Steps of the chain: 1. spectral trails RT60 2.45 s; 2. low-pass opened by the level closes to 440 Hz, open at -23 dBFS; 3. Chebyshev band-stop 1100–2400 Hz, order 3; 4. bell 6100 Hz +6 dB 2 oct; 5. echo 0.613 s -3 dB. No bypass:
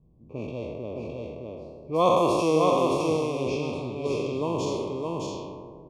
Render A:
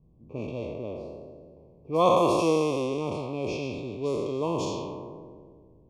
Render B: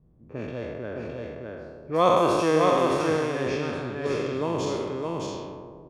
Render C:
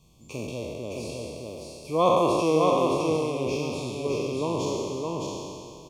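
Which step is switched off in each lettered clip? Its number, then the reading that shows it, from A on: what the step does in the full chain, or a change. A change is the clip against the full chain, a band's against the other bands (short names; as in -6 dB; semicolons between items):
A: 5, crest factor change +2.0 dB; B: 3, 2 kHz band +6.0 dB; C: 2, 8 kHz band +3.0 dB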